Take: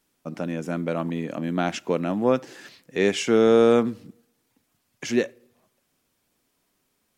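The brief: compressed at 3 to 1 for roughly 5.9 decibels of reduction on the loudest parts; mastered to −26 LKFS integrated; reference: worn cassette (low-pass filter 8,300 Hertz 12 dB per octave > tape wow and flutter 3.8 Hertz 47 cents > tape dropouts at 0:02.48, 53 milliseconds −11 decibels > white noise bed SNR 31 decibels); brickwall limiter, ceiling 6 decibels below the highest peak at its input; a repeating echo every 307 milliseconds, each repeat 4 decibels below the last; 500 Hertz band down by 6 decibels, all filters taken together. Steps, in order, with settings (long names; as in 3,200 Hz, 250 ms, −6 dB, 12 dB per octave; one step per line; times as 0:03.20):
parametric band 500 Hz −7 dB
downward compressor 3 to 1, threshold −24 dBFS
brickwall limiter −20 dBFS
low-pass filter 8,300 Hz 12 dB per octave
repeating echo 307 ms, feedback 63%, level −4 dB
tape wow and flutter 3.8 Hz 47 cents
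tape dropouts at 0:02.48, 53 ms −11 dB
white noise bed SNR 31 dB
level +5.5 dB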